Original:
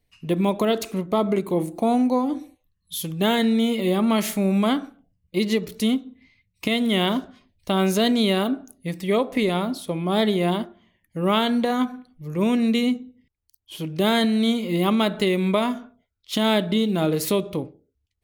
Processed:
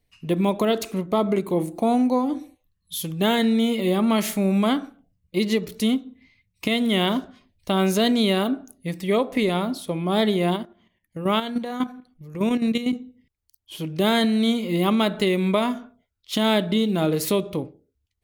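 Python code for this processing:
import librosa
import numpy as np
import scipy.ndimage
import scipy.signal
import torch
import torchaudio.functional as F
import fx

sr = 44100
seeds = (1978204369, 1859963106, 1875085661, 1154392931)

y = fx.level_steps(x, sr, step_db=10, at=(10.56, 12.93))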